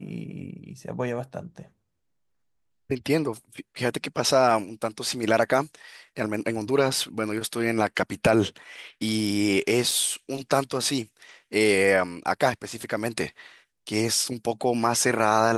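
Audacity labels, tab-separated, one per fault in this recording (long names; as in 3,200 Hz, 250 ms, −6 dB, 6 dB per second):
9.910000	9.910000	drop-out 4.1 ms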